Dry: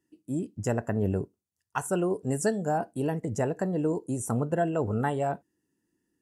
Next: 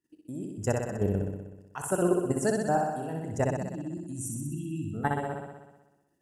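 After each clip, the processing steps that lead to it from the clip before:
time-frequency box erased 0:03.45–0:04.94, 350–2,400 Hz
output level in coarse steps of 13 dB
flutter between parallel walls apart 10.7 metres, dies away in 1.1 s
level +2 dB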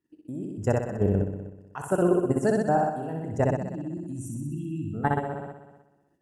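in parallel at 0 dB: output level in coarse steps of 15 dB
on the sum: high-shelf EQ 3,200 Hz −11.5 dB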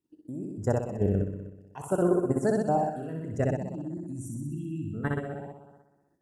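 auto-filter notch sine 0.54 Hz 790–3,100 Hz
level −2 dB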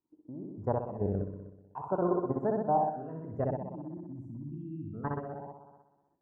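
low-pass with resonance 1,000 Hz, resonance Q 3.8
level −6.5 dB

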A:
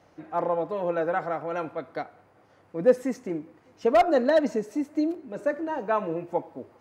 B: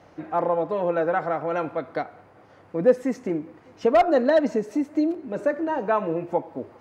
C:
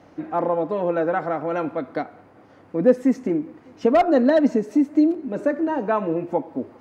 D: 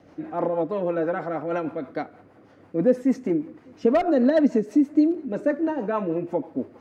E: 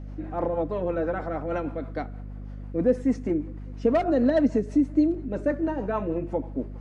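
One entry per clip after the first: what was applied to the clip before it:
high-shelf EQ 6,100 Hz −8 dB; in parallel at +2 dB: downward compressor, threshold −32 dBFS, peak gain reduction 17.5 dB
parametric band 260 Hz +8 dB 0.75 octaves
rotating-speaker cabinet horn 6.3 Hz
mains hum 50 Hz, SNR 11 dB; level −2 dB; MP3 64 kbit/s 24,000 Hz

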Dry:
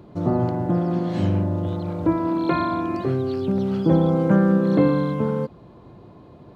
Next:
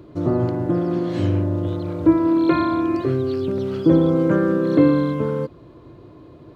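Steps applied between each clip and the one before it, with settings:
thirty-one-band graphic EQ 200 Hz −12 dB, 315 Hz +6 dB, 800 Hz −10 dB
level +2 dB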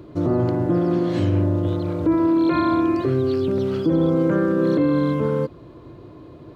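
brickwall limiter −13.5 dBFS, peak gain reduction 10 dB
level +2 dB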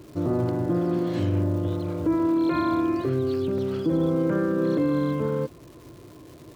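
surface crackle 500 per second −38 dBFS
level −4.5 dB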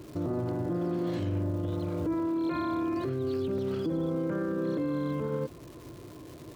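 brickwall limiter −24 dBFS, peak gain reduction 8.5 dB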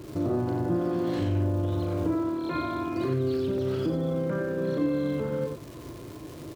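loudspeakers that aren't time-aligned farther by 13 metres −6 dB, 31 metres −7 dB
level +3 dB

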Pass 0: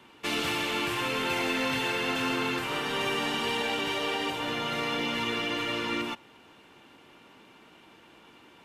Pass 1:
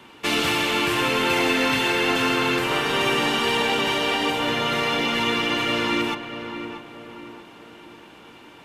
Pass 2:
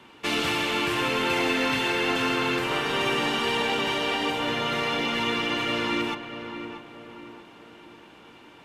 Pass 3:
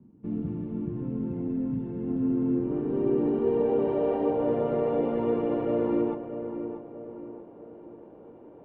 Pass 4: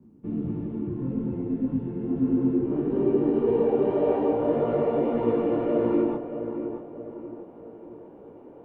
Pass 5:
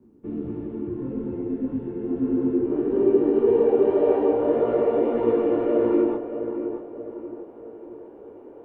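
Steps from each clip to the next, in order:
feedback echo with a low-pass in the loop 634 ms, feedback 45%, low-pass 1,900 Hz, level −8.5 dB; level +7.5 dB
high-shelf EQ 9,500 Hz −6 dB; level −3.5 dB
low-pass filter sweep 200 Hz → 530 Hz, 0:01.89–0:04.06
micro pitch shift up and down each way 59 cents; level +6 dB
graphic EQ with 15 bands 160 Hz −10 dB, 400 Hz +6 dB, 1,600 Hz +3 dB

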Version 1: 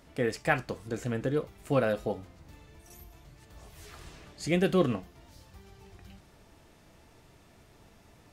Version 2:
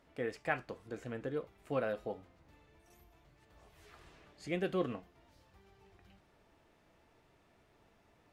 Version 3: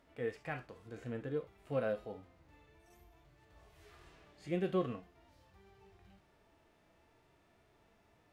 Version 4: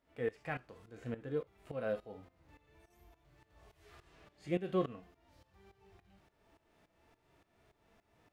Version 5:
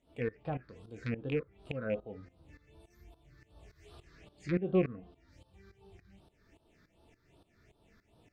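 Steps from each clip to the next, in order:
bass and treble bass −6 dB, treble −9 dB; level −7.5 dB
harmonic and percussive parts rebalanced percussive −12 dB; level +2.5 dB
shaped tremolo saw up 3.5 Hz, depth 85%; level +3 dB
loose part that buzzes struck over −42 dBFS, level −28 dBFS; treble cut that deepens with the level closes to 1,400 Hz, closed at −35.5 dBFS; all-pass phaser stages 6, 2.6 Hz, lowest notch 740–2,000 Hz; level +6 dB

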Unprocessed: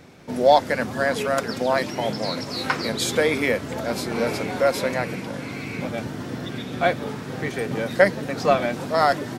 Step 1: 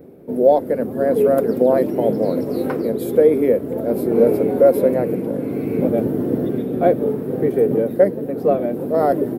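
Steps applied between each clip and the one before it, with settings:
drawn EQ curve 110 Hz 0 dB, 440 Hz +13 dB, 950 Hz −7 dB, 6,500 Hz −22 dB, 13,000 Hz +7 dB
automatic gain control gain up to 6 dB
level −1 dB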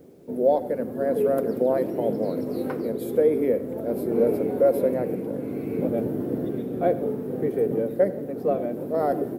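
bit reduction 10 bits
on a send at −15 dB: convolution reverb RT60 0.70 s, pre-delay 62 ms
on the sum: level −7 dB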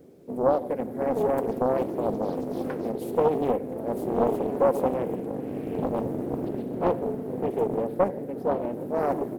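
highs frequency-modulated by the lows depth 0.74 ms
level −2 dB

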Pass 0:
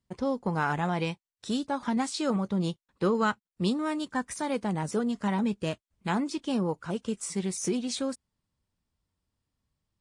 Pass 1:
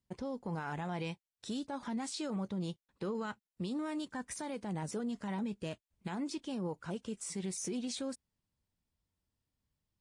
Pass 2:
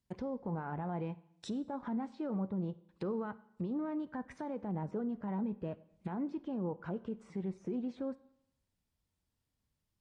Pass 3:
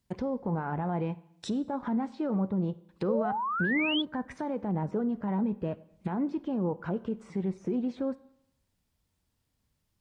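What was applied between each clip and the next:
parametric band 1,200 Hz −3.5 dB 0.46 octaves; brickwall limiter −26 dBFS, peak gain reduction 10.5 dB; level −4.5 dB
treble cut that deepens with the level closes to 1,100 Hz, closed at −37.5 dBFS; four-comb reverb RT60 0.77 s, combs from 31 ms, DRR 17 dB; level +1 dB
sound drawn into the spectrogram rise, 0:03.08–0:04.02, 480–3,500 Hz −38 dBFS; level +7 dB

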